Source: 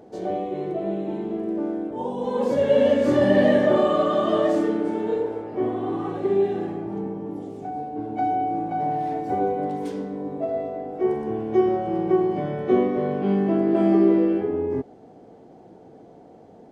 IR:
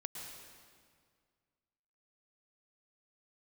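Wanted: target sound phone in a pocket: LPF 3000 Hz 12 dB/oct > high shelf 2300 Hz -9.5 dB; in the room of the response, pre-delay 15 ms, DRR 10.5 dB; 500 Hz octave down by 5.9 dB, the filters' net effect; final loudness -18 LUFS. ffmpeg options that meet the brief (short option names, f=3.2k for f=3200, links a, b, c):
-filter_complex "[0:a]equalizer=f=500:t=o:g=-7.5,asplit=2[a][b];[1:a]atrim=start_sample=2205,adelay=15[c];[b][c]afir=irnorm=-1:irlink=0,volume=-9dB[d];[a][d]amix=inputs=2:normalize=0,lowpass=3k,highshelf=f=2.3k:g=-9.5,volume=8.5dB"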